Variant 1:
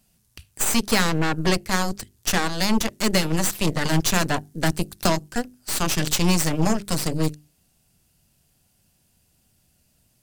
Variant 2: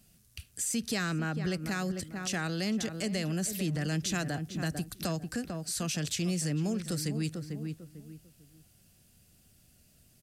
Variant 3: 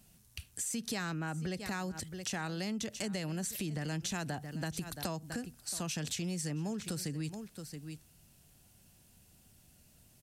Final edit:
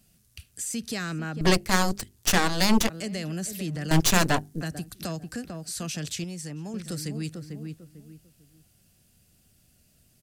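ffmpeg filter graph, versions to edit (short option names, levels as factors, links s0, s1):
-filter_complex "[0:a]asplit=2[s0][s1];[1:a]asplit=4[s2][s3][s4][s5];[s2]atrim=end=1.412[s6];[s0]atrim=start=1.408:end=2.902[s7];[s3]atrim=start=2.898:end=3.912[s8];[s1]atrim=start=3.908:end=4.612[s9];[s4]atrim=start=4.608:end=6.242[s10];[2:a]atrim=start=6.238:end=6.742[s11];[s5]atrim=start=6.738[s12];[s6][s7]acrossfade=d=0.004:c1=hsin:c2=hsin[s13];[s13][s8]acrossfade=d=0.004:c1=hsin:c2=hsin[s14];[s14][s9]acrossfade=d=0.004:c1=hsin:c2=hsin[s15];[s15][s10]acrossfade=d=0.004:c1=hsin:c2=hsin[s16];[s16][s11]acrossfade=d=0.004:c1=hsin:c2=hsin[s17];[s17][s12]acrossfade=d=0.004:c1=hsin:c2=hsin"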